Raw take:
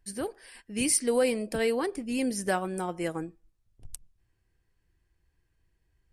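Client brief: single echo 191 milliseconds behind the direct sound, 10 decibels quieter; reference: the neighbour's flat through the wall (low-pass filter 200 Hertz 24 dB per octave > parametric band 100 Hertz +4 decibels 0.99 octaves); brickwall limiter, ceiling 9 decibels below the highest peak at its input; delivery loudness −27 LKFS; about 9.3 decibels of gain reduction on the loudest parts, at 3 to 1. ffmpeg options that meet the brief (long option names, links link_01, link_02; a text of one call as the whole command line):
ffmpeg -i in.wav -af "acompressor=threshold=-33dB:ratio=3,alimiter=level_in=4.5dB:limit=-24dB:level=0:latency=1,volume=-4.5dB,lowpass=frequency=200:width=0.5412,lowpass=frequency=200:width=1.3066,equalizer=frequency=100:width_type=o:width=0.99:gain=4,aecho=1:1:191:0.316,volume=21dB" out.wav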